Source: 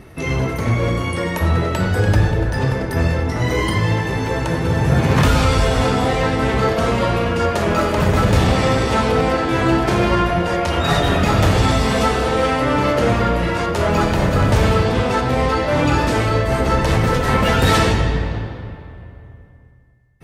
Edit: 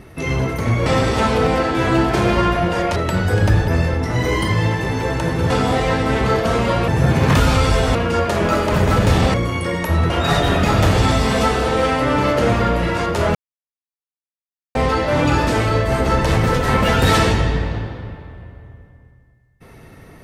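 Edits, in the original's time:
0.86–1.62 s: swap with 8.60–10.70 s
2.34–2.94 s: delete
4.76–5.83 s: move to 7.21 s
13.95–15.35 s: mute

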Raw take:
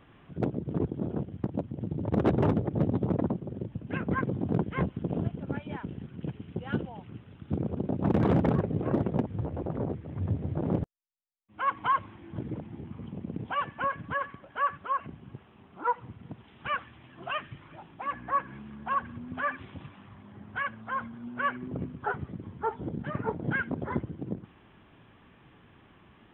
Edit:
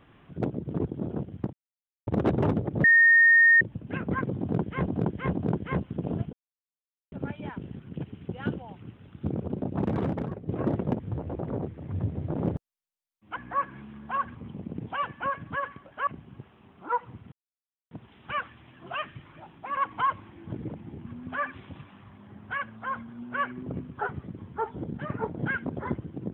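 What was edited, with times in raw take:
1.53–2.07 s: mute
2.84–3.61 s: bleep 1.84 kHz -14 dBFS
4.40–4.87 s: loop, 3 plays
5.39 s: insert silence 0.79 s
7.77–8.75 s: fade out, to -12 dB
11.63–12.93 s: swap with 18.13–19.12 s
14.65–15.02 s: delete
16.27 s: insert silence 0.59 s

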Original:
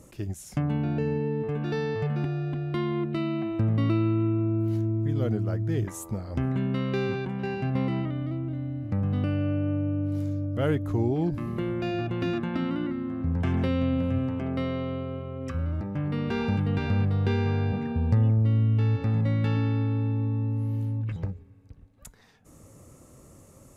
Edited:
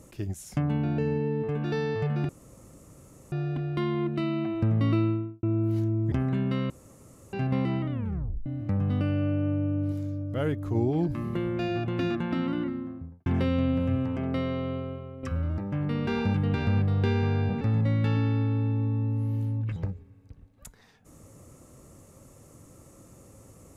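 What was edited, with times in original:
2.29 s: insert room tone 1.03 s
3.95–4.40 s: studio fade out
5.09–6.35 s: delete
6.93–7.56 s: room tone
8.14 s: tape stop 0.55 s
10.15–10.98 s: gain -3 dB
12.80–13.49 s: studio fade out
15.01–15.46 s: fade out, to -8.5 dB
17.84–19.01 s: delete

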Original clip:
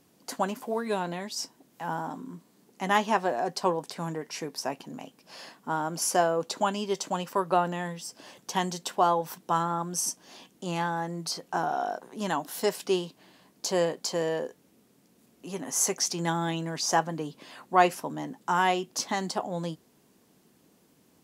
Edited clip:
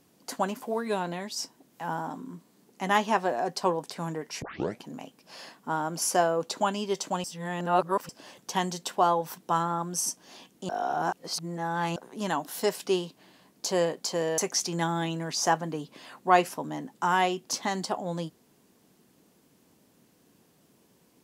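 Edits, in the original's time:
4.42 s: tape start 0.39 s
7.24–8.09 s: reverse
10.69–11.96 s: reverse
14.38–15.84 s: delete

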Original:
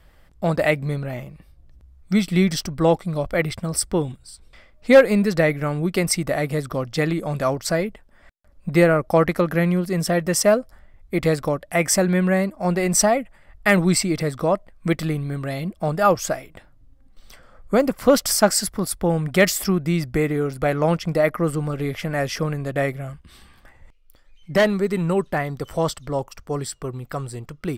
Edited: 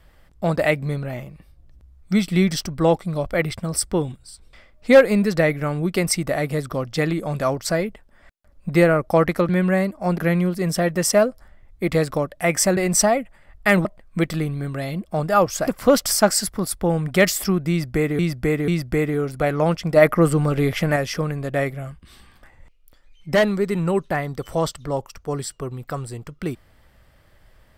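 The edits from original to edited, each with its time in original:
12.08–12.77 s: move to 9.49 s
13.85–14.54 s: delete
16.36–17.87 s: delete
19.90–20.39 s: loop, 3 plays
21.18–22.18 s: gain +5.5 dB

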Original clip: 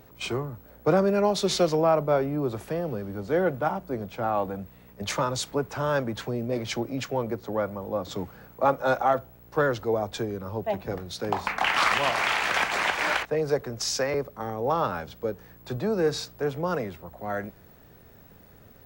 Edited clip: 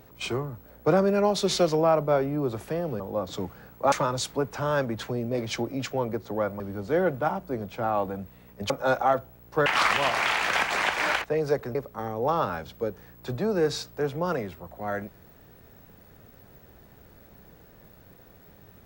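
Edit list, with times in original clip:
3.00–5.10 s: swap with 7.78–8.70 s
9.66–11.67 s: delete
13.76–14.17 s: delete

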